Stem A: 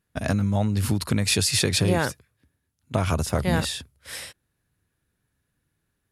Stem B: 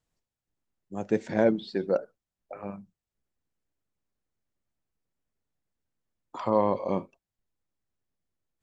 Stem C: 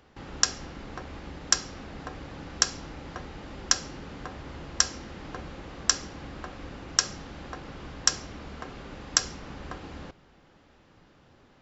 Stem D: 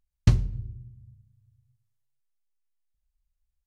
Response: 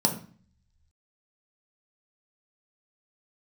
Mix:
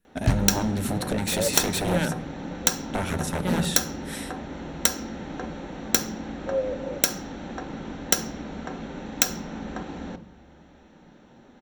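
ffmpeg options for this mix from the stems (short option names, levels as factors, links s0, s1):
-filter_complex "[0:a]aeval=exprs='0.106*(abs(mod(val(0)/0.106+3,4)-2)-1)':c=same,volume=0.708,asplit=2[s0][s1];[s1]volume=0.141[s2];[1:a]asplit=3[s3][s4][s5];[s3]bandpass=f=530:t=q:w=8,volume=1[s6];[s4]bandpass=f=1840:t=q:w=8,volume=0.501[s7];[s5]bandpass=f=2480:t=q:w=8,volume=0.355[s8];[s6][s7][s8]amix=inputs=3:normalize=0,volume=1.06[s9];[2:a]aeval=exprs='(mod(2.11*val(0)+1,2)-1)/2.11':c=same,adelay=50,volume=1.06,asplit=2[s10][s11];[s11]volume=0.211[s12];[3:a]volume=0.708[s13];[4:a]atrim=start_sample=2205[s14];[s2][s12]amix=inputs=2:normalize=0[s15];[s15][s14]afir=irnorm=-1:irlink=0[s16];[s0][s9][s10][s13][s16]amix=inputs=5:normalize=0"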